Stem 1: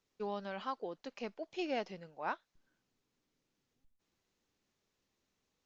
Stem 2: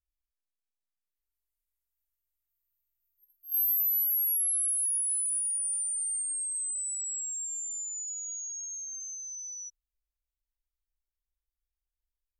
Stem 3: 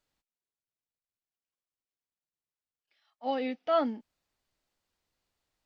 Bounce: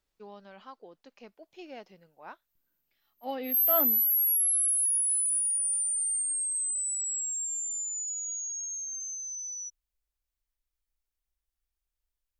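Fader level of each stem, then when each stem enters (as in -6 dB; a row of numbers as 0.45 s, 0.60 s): -8.0 dB, +2.5 dB, -4.0 dB; 0.00 s, 0.00 s, 0.00 s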